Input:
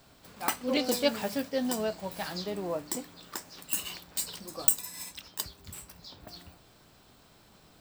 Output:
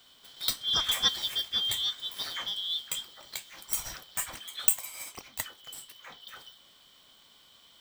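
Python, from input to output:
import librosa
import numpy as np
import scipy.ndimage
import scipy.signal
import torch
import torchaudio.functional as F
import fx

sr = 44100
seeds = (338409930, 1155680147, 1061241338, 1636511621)

y = fx.band_shuffle(x, sr, order='3412')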